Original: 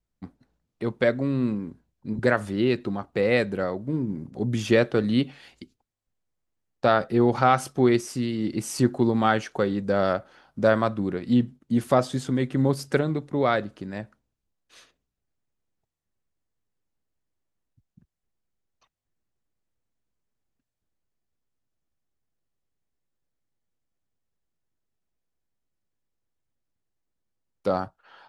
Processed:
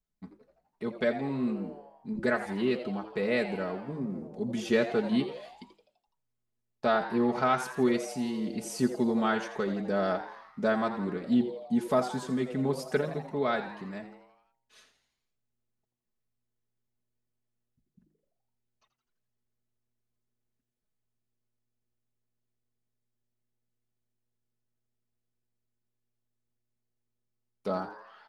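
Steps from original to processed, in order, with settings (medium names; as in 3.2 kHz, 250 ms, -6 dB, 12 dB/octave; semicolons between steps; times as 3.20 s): comb 4.7 ms, depth 76%; de-hum 51.78 Hz, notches 4; frequency-shifting echo 84 ms, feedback 56%, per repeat +120 Hz, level -12 dB; trim -8 dB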